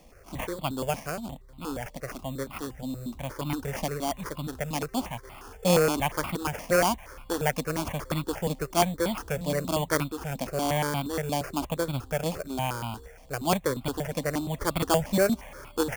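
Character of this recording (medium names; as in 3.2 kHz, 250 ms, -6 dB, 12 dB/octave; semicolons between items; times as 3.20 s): aliases and images of a low sample rate 3.9 kHz, jitter 0%; notches that jump at a steady rate 8.5 Hz 390–1700 Hz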